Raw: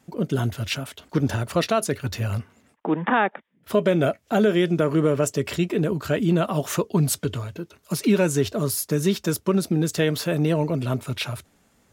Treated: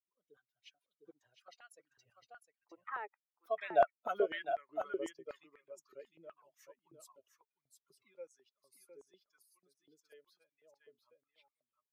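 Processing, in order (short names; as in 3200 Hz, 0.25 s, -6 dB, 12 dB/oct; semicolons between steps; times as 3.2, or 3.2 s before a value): per-bin expansion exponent 2; Doppler pass-by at 3.91, 22 m/s, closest 1.9 m; echo 0.706 s -7 dB; stepped high-pass 8.1 Hz 420–1900 Hz; gain -1 dB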